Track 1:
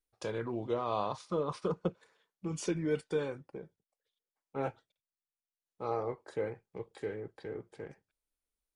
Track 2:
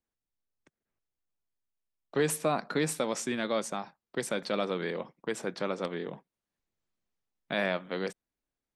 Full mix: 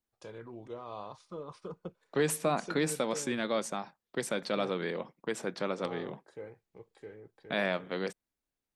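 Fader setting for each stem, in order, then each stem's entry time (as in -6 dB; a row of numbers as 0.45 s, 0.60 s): -9.5 dB, -1.0 dB; 0.00 s, 0.00 s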